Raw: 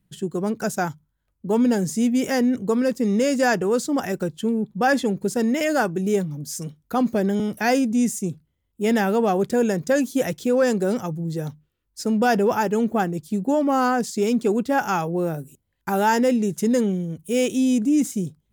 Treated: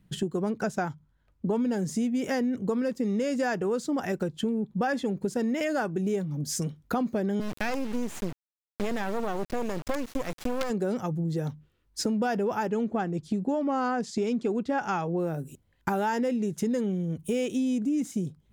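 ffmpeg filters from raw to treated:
-filter_complex "[0:a]asettb=1/sr,asplit=3[a][b][c];[a]atrim=end=0.584[d];[b]atrim=start=0.58:end=1.55,asetpts=PTS-STARTPTS,afade=t=in:d=0.004:c=qsin,afade=t=out:st=0.966:d=0.004:c=qsin,highshelf=f=7.5k:g=-8[e];[c]atrim=start=1.546[f];[d][e]acrossfade=d=0.004:c1=hsin:c2=qsin[g];[g][f]acrossfade=d=0.004:c1=qsin:c2=hsin,asplit=3[h][i][j];[h]afade=t=out:st=7.4:d=0.02[k];[i]acrusher=bits=3:dc=4:mix=0:aa=0.000001,afade=t=in:st=7.4:d=0.02,afade=t=out:st=10.69:d=0.02[l];[j]afade=t=in:st=10.69:d=0.02[m];[k][l][m]amix=inputs=3:normalize=0,asettb=1/sr,asplit=3[n][o][p];[n]atrim=end=12.674[q];[o]atrim=start=12.67:end=15.2,asetpts=PTS-STARTPTS,afade=t=in:d=0.004:c=qsin,afade=t=out:st=2.526:d=0.004:c=qsin,lowpass=7.4k[r];[p]atrim=start=15.196[s];[q][r]acrossfade=d=0.004:c1=hsin:c2=qsin[t];[t][s]acrossfade=d=0.004:c1=qsin:c2=hsin,highshelf=f=7k:g=-10.5,acompressor=threshold=-34dB:ratio=5,volume=7dB"

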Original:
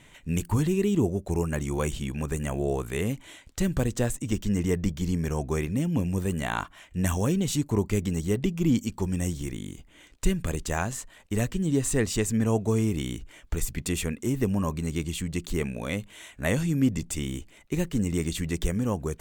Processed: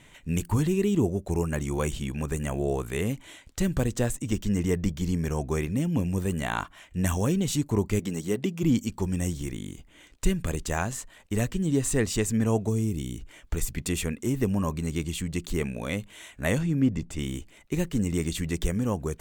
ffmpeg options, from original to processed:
-filter_complex "[0:a]asettb=1/sr,asplit=3[a][b][c];[a]atrim=end=7.994[d];[b]atrim=start=7.99:end=8.63,asetpts=PTS-STARTPTS,afade=t=in:d=0.004:c=qsin,afade=t=out:st=0.636:d=0.004:c=qsin,highpass=180[e];[c]atrim=start=8.626[f];[d][e]acrossfade=d=0.004:c1=hsin:c2=qsin[g];[g][f]acrossfade=d=0.004:c1=qsin:c2=hsin,asplit=3[h][i][j];[h]afade=t=out:st=12.68:d=0.02[k];[i]equalizer=f=1.3k:w=0.4:g=-11.5,afade=t=in:st=12.68:d=0.02,afade=t=out:st=13.16:d=0.02[l];[j]afade=t=in:st=13.16:d=0.02[m];[k][l][m]amix=inputs=3:normalize=0,asettb=1/sr,asplit=3[n][o][p];[n]atrim=end=16.584[q];[o]atrim=start=16.58:end=17.19,asetpts=PTS-STARTPTS,afade=t=in:d=0.004:c=qsin,afade=t=out:st=0.606:d=0.004:c=qsin,lowpass=f=2.3k:p=1[r];[p]atrim=start=17.186[s];[q][r]acrossfade=d=0.004:c1=hsin:c2=qsin[t];[t][s]acrossfade=d=0.004:c1=qsin:c2=hsin"

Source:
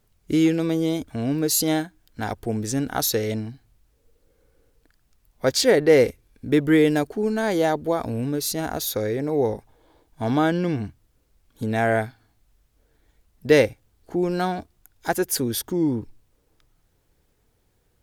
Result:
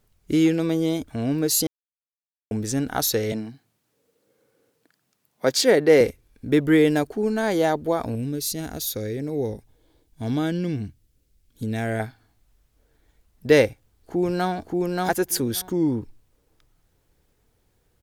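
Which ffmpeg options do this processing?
-filter_complex "[0:a]asettb=1/sr,asplit=3[a][b][c];[a]atrim=end=3.324[d];[b]atrim=start=3.32:end=6.01,asetpts=PTS-STARTPTS,afade=t=in:d=0.004:c=qsin,afade=t=out:st=2.686:d=0.004:c=qsin,highpass=f=140:w=0.5412,highpass=f=140:w=1.3066[e];[c]atrim=start=6.006[f];[d][e]acrossfade=d=0.004:c1=hsin:c2=qsin[g];[g][f]acrossfade=d=0.004:c1=qsin:c2=hsin,asettb=1/sr,asplit=3[h][i][j];[h]atrim=end=8.154[k];[i]atrim=start=8.15:end=12,asetpts=PTS-STARTPTS,afade=t=in:d=0.004:c=qsin,afade=t=out:st=3.846:d=0.004:c=qsin,equalizer=f=960:w=0.68:g=-12[l];[j]atrim=start=11.996[m];[k][l]acrossfade=d=0.004:c1=hsin:c2=qsin[n];[n][m]acrossfade=d=0.004:c1=qsin:c2=hsin,asplit=2[o][p];[p]afade=t=in:st=13.67:d=0.01,afade=t=out:st=14.52:d=0.01,aecho=0:1:580|1160:0.841395|0.0841395[q];[o][q]amix=inputs=2:normalize=0,asplit=3[r][s][t];[r]atrim=end=1.67,asetpts=PTS-STARTPTS,afade=t=out:st=1.666:d=0.004:c=hsin[u];[s]atrim=start=1.67:end=2.51,asetpts=PTS-STARTPTS,volume=0[v];[t]atrim=start=2.51,asetpts=PTS-STARTPTS,afade=t=in:d=0.004:c=hsin[w];[u][v][w]concat=n=3:v=0:a=1"

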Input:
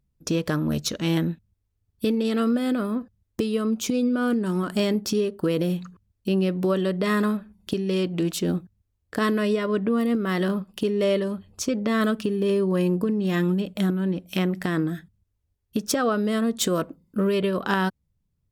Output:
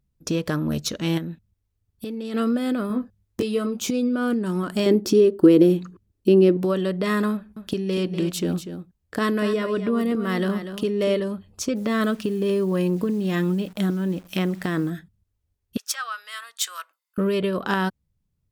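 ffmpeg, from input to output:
-filter_complex "[0:a]asplit=3[a][b][c];[a]afade=t=out:st=1.17:d=0.02[d];[b]acompressor=threshold=-28dB:ratio=6:attack=3.2:release=140:knee=1:detection=peak,afade=t=in:st=1.17:d=0.02,afade=t=out:st=2.33:d=0.02[e];[c]afade=t=in:st=2.33:d=0.02[f];[d][e][f]amix=inputs=3:normalize=0,asettb=1/sr,asplit=3[g][h][i];[g]atrim=end=2.884[j];[h]atrim=start=2.88:end=3.91,asetpts=PTS-STARTPTS,afade=t=in:d=0.004:c=qsin,afade=t=out:st=1.026:d=0.004:c=qsin,asplit=2[k][l];[l]adelay=20,volume=-4dB[m];[k][m]amix=inputs=2:normalize=0,atrim=end_sample=45423[n];[i]atrim=start=3.906[o];[j][n]acrossfade=d=0.004:c1=hsin:c2=qsin[p];[p][o]acrossfade=d=0.004:c1=qsin:c2=hsin,asettb=1/sr,asplit=3[q][r][s];[q]atrim=end=4.864[t];[r]atrim=start=4.86:end=6.57,asetpts=PTS-STARTPTS,afade=t=in:d=0.004:c=qsin,afade=t=out:st=1.706:d=0.004:c=qsin,equalizer=f=340:t=o:w=0.77:g=14[u];[s]atrim=start=6.566[v];[t][u]acrossfade=d=0.004:c1=hsin:c2=qsin[w];[w][v]acrossfade=d=0.004:c1=qsin:c2=hsin,asettb=1/sr,asplit=3[x][y][z];[x]atrim=end=7.324[aa];[y]atrim=start=7.32:end=11.2,asetpts=PTS-STARTPTS,afade=t=in:d=0.004:c=qsin,afade=t=out:st=3.876:d=0.004:c=qsin,aecho=1:1:243:0.316,atrim=end_sample=171108[ab];[z]atrim=start=11.196[ac];[aa][ab]acrossfade=d=0.004:c1=hsin:c2=qsin[ad];[ad][ac]acrossfade=d=0.004:c1=qsin:c2=hsin,asplit=3[ae][af][ag];[ae]afade=t=out:st=11.75:d=0.02[ah];[af]acrusher=bits=9:dc=4:mix=0:aa=0.000001,afade=t=in:st=11.75:d=0.02,afade=t=out:st=14.89:d=0.02[ai];[ag]afade=t=in:st=14.89:d=0.02[aj];[ah][ai][aj]amix=inputs=3:normalize=0,asettb=1/sr,asplit=3[ak][al][am];[ak]atrim=end=15.774[an];[al]atrim=start=15.77:end=17.18,asetpts=PTS-STARTPTS,afade=t=in:d=0.004:c=qsin,afade=t=out:st=1.406:d=0.004:c=qsin,highpass=f=1.2k:w=0.5412,highpass=f=1.2k:w=1.3066[ao];[am]atrim=start=17.176[ap];[an][ao]acrossfade=d=0.004:c1=hsin:c2=qsin[aq];[aq][ap]acrossfade=d=0.004:c1=qsin:c2=hsin"

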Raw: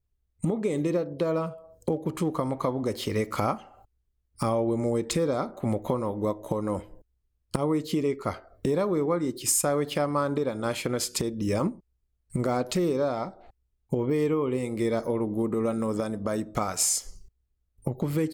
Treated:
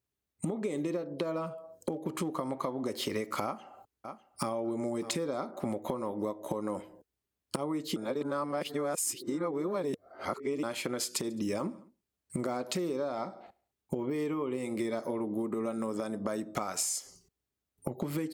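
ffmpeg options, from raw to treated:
-filter_complex "[0:a]asplit=2[a][b];[b]afade=t=in:st=3.44:d=0.01,afade=t=out:st=4.56:d=0.01,aecho=0:1:600|1200|1800:0.133352|0.0533409|0.0213363[c];[a][c]amix=inputs=2:normalize=0,asplit=3[d][e][f];[d]afade=t=out:st=11.24:d=0.02[g];[e]aecho=1:1:70|140|210:0.075|0.0382|0.0195,afade=t=in:st=11.24:d=0.02,afade=t=out:st=15.2:d=0.02[h];[f]afade=t=in:st=15.2:d=0.02[i];[g][h][i]amix=inputs=3:normalize=0,asplit=3[j][k][l];[j]atrim=end=7.962[m];[k]atrim=start=7.958:end=10.632,asetpts=PTS-STARTPTS,areverse[n];[l]atrim=start=10.628[o];[m][n]acrossfade=d=0.004:c1=hsin:c2=hsin[p];[p][o]acrossfade=d=0.004:c1=hsin:c2=hsin,highpass=200,bandreject=f=470:w=12,acompressor=threshold=-32dB:ratio=6,volume=2dB"

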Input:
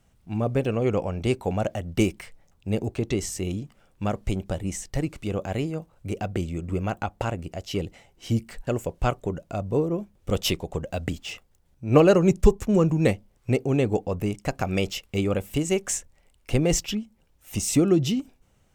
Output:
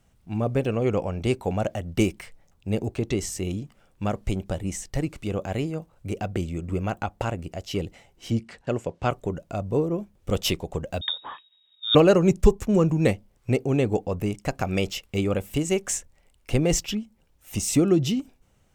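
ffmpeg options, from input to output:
-filter_complex "[0:a]asettb=1/sr,asplit=3[a][b][c];[a]atrim=end=8.304[d];[b]atrim=start=8.3:end=9.11,asetpts=PTS-STARTPTS,afade=t=in:d=0.004:c=qsin,afade=t=out:st=0.806:d=0.004:c=qsin,highpass=100,lowpass=5.8k[e];[c]atrim=start=9.106[f];[d][e]acrossfade=d=0.004:c1=hsin:c2=qsin[g];[g][f]acrossfade=d=0.004:c1=qsin:c2=hsin,asettb=1/sr,asplit=3[h][i][j];[h]atrim=end=11.014[k];[i]atrim=start=11.01:end=11.95,asetpts=PTS-STARTPTS,afade=t=in:d=0.004:c=qsin,afade=t=out:st=0.936:d=0.004:c=qsin,lowpass=f=3.2k:t=q:w=0.5098,lowpass=f=3.2k:t=q:w=0.6013,lowpass=f=3.2k:t=q:w=0.9,lowpass=f=3.2k:t=q:w=2.563,afreqshift=-3800[l];[j]atrim=start=11.946[m];[k][l]acrossfade=d=0.004:c1=hsin:c2=qsin[n];[n][m]acrossfade=d=0.004:c1=qsin:c2=hsin"

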